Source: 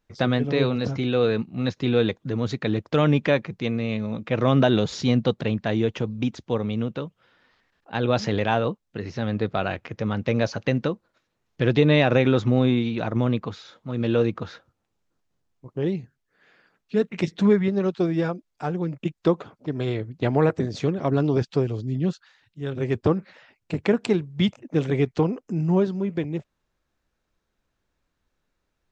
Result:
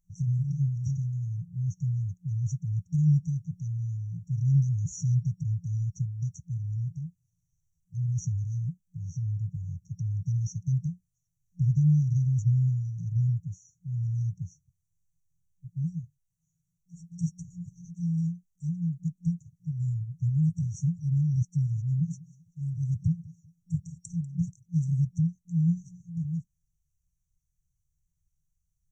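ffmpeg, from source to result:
-filter_complex "[0:a]asettb=1/sr,asplit=3[a][b][c];[a]atrim=end=21.504[d];[b]atrim=start=21.5:end=24.52,asetpts=PTS-STARTPTS,afade=t=in:d=0.004:c=qsin,afade=t=out:st=3.016:d=0.004:c=qsin,aecho=1:1:193|386:0.0944|0.0293,atrim=end_sample=133182[e];[c]atrim=start=24.516[f];[d][e]acrossfade=d=0.004:c1=hsin:c2=qsin[g];[g][f]acrossfade=d=0.004:c1=qsin:c2=hsin,afftfilt=real='re*(1-between(b*sr/4096,180,5600))':imag='im*(1-between(b*sr/4096,180,5600))':win_size=4096:overlap=0.75,volume=1dB"

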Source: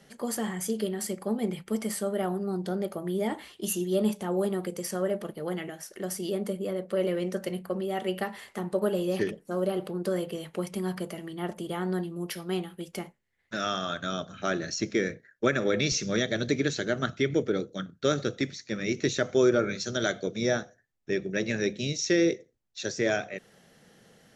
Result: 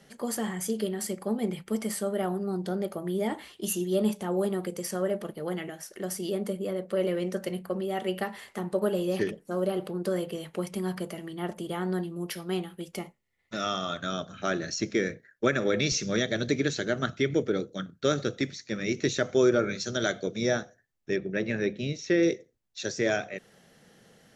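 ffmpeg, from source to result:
-filter_complex "[0:a]asettb=1/sr,asplit=3[a][b][c];[a]atrim=end=12.964[d];[b]atrim=start=12.96:end=13.98,asetpts=PTS-STARTPTS,afade=t=in:d=0.004:c=qsin,afade=t=out:st=1.016:d=0.004:c=qsin,asuperstop=centerf=1600:order=4:qfactor=5.9[e];[c]atrim=start=13.976[f];[d][e]acrossfade=d=0.004:c1=hsin:c2=qsin[g];[g][f]acrossfade=d=0.004:c1=qsin:c2=hsin,asettb=1/sr,asplit=3[h][i][j];[h]atrim=end=21.164[k];[i]atrim=start=21.16:end=22.23,asetpts=PTS-STARTPTS,afade=t=in:d=0.004:c=qsin,afade=t=out:st=1.066:d=0.004:c=qsin,bass=f=250:g=0,treble=f=4k:g=-14[l];[j]atrim=start=22.226[m];[k][l]acrossfade=d=0.004:c1=hsin:c2=qsin[n];[n][m]acrossfade=d=0.004:c1=qsin:c2=hsin"

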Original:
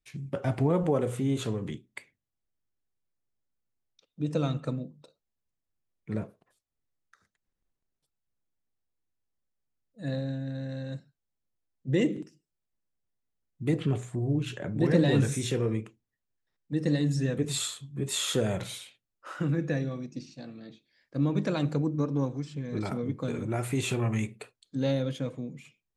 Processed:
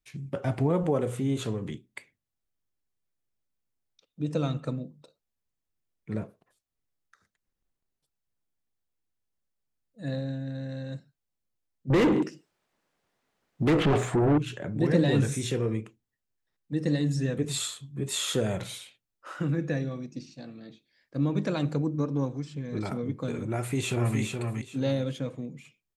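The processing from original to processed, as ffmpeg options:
-filter_complex "[0:a]asettb=1/sr,asplit=3[a][b][c];[a]atrim=end=11.904[d];[b]atrim=start=11.9:end=14.38,asetpts=PTS-STARTPTS,afade=t=in:d=0.004:c=qsin,afade=t=out:st=2.476:d=0.004:c=qsin,asplit=2[e][f];[f]highpass=f=720:p=1,volume=31dB,asoftclip=type=tanh:threshold=-14dB[g];[e][g]amix=inputs=2:normalize=0,lowpass=f=1.4k:p=1,volume=-6dB[h];[c]atrim=start=14.376[i];[d][h]acrossfade=d=0.004:c1=hsin:c2=qsin[j];[j][i]acrossfade=d=0.004:c1=qsin:c2=hsin,asplit=2[k][l];[l]afade=t=in:st=23.54:d=0.01,afade=t=out:st=24.19:d=0.01,aecho=0:1:420|840|1260:0.595662|0.148916|0.0372289[m];[k][m]amix=inputs=2:normalize=0"

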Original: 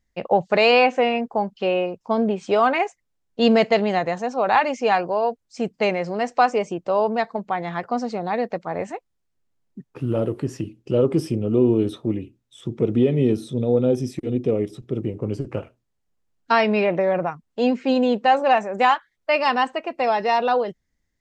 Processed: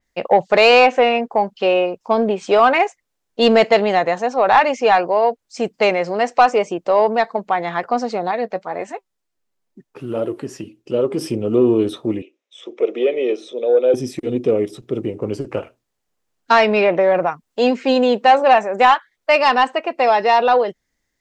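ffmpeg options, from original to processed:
-filter_complex "[0:a]asettb=1/sr,asplit=3[a][b][c];[a]atrim=end=8.314[d];[b]atrim=start=8.31:end=11.21,asetpts=PTS-STARTPTS,afade=t=in:d=0.004:c=qsin,afade=t=out:st=2.896:d=0.004:c=qsin,flanger=delay=2.8:depth=2.6:regen=60:speed=2:shape=sinusoidal[e];[c]atrim=start=11.206[f];[d][e]acrossfade=d=0.004:c1=hsin:c2=qsin[g];[g][f]acrossfade=d=0.004:c1=qsin:c2=hsin,asettb=1/sr,asplit=3[h][i][j];[h]atrim=end=12.224[k];[i]atrim=start=12.22:end=13.94,asetpts=PTS-STARTPTS,afade=t=in:d=0.004:c=qsin,afade=t=out:st=1.716:d=0.004:c=qsin,highpass=f=390:w=0.5412,highpass=f=390:w=1.3066,equalizer=f=560:t=q:w=4:g=4,equalizer=f=890:t=q:w=4:g=-6,equalizer=f=1.5k:t=q:w=4:g=-7,equalizer=f=2.3k:t=q:w=4:g=5,equalizer=f=4.5k:t=q:w=4:g=-10,lowpass=f=6k:w=0.5412,lowpass=f=6k:w=1.3066[l];[j]atrim=start=13.936[m];[k][l]acrossfade=d=0.004:c1=hsin:c2=qsin[n];[n][m]acrossfade=d=0.004:c1=qsin:c2=hsin,asettb=1/sr,asplit=3[o][p][q];[o]atrim=end=17.054[r];[p]atrim=start=17.05:end=18.32,asetpts=PTS-STARTPTS,afade=t=in:d=0.004:c=qsin,afade=t=out:st=1.266:d=0.004:c=qsin,highshelf=f=5k:g=4.5[s];[q]atrim=start=18.316[t];[r][s]acrossfade=d=0.004:c1=hsin:c2=qsin[u];[u][t]acrossfade=d=0.004:c1=qsin:c2=hsin,bass=f=250:g=-10,treble=f=4k:g=1,acontrast=72,adynamicequalizer=threshold=0.0178:dfrequency=4500:dqfactor=0.7:tfrequency=4500:tqfactor=0.7:attack=5:release=100:ratio=0.375:range=2.5:mode=cutabove:tftype=highshelf"

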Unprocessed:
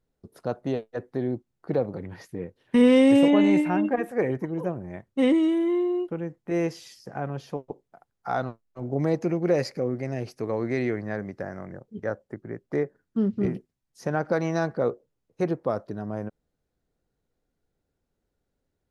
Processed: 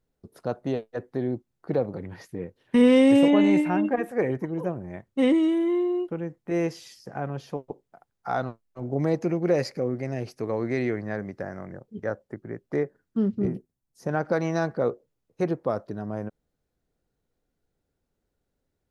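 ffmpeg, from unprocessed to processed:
-filter_complex "[0:a]asettb=1/sr,asplit=3[a][b][c];[a]atrim=end=13.354[d];[b]atrim=start=13.35:end=14.09,asetpts=PTS-STARTPTS,afade=t=in:d=0.004:c=qsin,afade=t=out:st=0.736:d=0.004:c=qsin,equalizer=f=2.7k:w=0.46:g=-8.5[e];[c]atrim=start=14.086[f];[d][e]acrossfade=d=0.004:c1=hsin:c2=qsin[g];[g][f]acrossfade=d=0.004:c1=qsin:c2=hsin"

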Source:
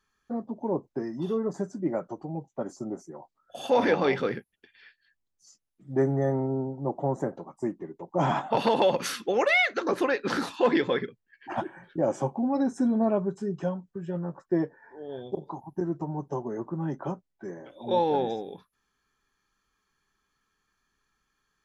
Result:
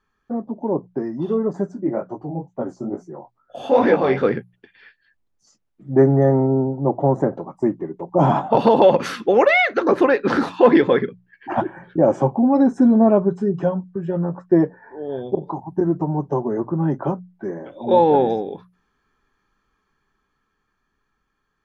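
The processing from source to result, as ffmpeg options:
-filter_complex "[0:a]asplit=3[a][b][c];[a]afade=t=out:st=1.73:d=0.02[d];[b]flanger=delay=16:depth=7.5:speed=2.3,afade=t=in:st=1.73:d=0.02,afade=t=out:st=4.22:d=0.02[e];[c]afade=t=in:st=4.22:d=0.02[f];[d][e][f]amix=inputs=3:normalize=0,asettb=1/sr,asplit=3[g][h][i];[g]atrim=end=8.154[j];[h]atrim=start=8.15:end=8.84,asetpts=PTS-STARTPTS,afade=t=in:d=0.004:c=qsin,afade=t=out:st=0.686:d=0.004:c=qsin,equalizer=f=1.9k:w=1.5:g=-8.5[k];[i]atrim=start=8.836[l];[j][k]acrossfade=d=0.004:c1=hsin:c2=qsin[m];[m][l]acrossfade=d=0.004:c1=qsin:c2=hsin,lowpass=f=1.3k:p=1,bandreject=f=60:t=h:w=6,bandreject=f=120:t=h:w=6,bandreject=f=180:t=h:w=6,dynaudnorm=f=180:g=21:m=4dB,volume=7dB"

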